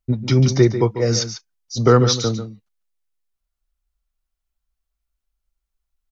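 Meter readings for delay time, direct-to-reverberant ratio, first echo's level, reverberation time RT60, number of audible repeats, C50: 0.144 s, none, -11.0 dB, none, 1, none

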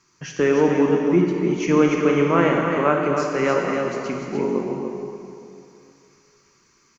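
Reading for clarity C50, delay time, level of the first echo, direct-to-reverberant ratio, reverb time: 0.0 dB, 0.293 s, -6.0 dB, -1.0 dB, 2.6 s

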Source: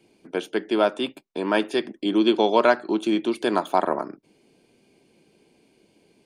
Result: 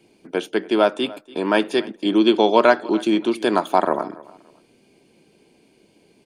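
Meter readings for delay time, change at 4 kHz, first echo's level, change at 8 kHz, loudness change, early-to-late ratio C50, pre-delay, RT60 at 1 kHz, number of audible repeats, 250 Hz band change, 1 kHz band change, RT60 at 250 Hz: 0.287 s, +3.5 dB, -21.0 dB, n/a, +3.5 dB, none, none, none, 2, +3.5 dB, +3.5 dB, none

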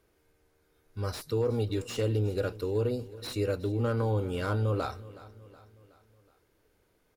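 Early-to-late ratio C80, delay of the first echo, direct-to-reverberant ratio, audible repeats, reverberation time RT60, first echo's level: none, 0.37 s, none, 3, none, -18.5 dB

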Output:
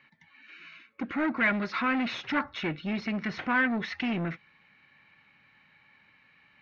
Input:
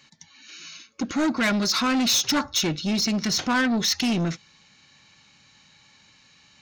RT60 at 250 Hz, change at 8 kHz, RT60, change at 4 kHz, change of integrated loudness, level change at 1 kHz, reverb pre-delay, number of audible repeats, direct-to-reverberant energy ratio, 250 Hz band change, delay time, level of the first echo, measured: none, under -30 dB, none, -16.0 dB, -6.5 dB, -3.5 dB, none, none, none, -6.5 dB, none, none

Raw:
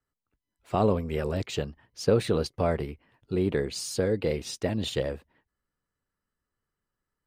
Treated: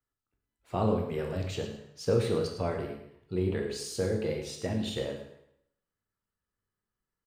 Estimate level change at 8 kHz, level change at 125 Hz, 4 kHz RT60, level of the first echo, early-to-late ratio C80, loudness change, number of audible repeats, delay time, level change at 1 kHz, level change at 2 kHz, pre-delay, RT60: -4.5 dB, -2.5 dB, 0.70 s, -12.0 dB, 7.5 dB, -3.5 dB, 1, 0.107 s, -4.5 dB, -4.5 dB, 6 ms, 0.70 s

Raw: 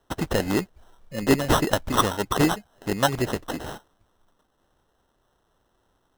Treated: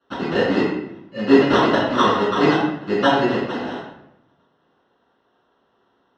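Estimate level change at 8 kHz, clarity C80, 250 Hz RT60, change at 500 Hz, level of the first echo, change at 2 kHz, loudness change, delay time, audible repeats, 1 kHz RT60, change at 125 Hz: under -10 dB, 3.5 dB, 0.95 s, +7.5 dB, none, +6.5 dB, +5.5 dB, none, none, 0.75 s, -0.5 dB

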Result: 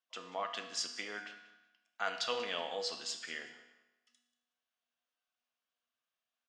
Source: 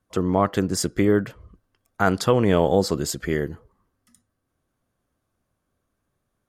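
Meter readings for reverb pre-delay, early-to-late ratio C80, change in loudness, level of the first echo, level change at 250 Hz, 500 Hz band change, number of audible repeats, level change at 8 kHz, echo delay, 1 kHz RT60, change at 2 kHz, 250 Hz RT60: 4 ms, 9.5 dB, -16.5 dB, -18.5 dB, -32.0 dB, -20.5 dB, 2, -13.0 dB, 0.186 s, 1.0 s, -10.0 dB, 1.0 s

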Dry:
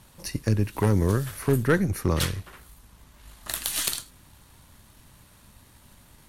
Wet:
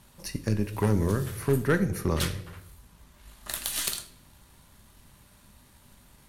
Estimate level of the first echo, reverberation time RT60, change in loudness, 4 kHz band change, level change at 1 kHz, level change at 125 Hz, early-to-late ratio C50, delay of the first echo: none, 0.75 s, -2.5 dB, -2.5 dB, -2.5 dB, -3.5 dB, 14.5 dB, none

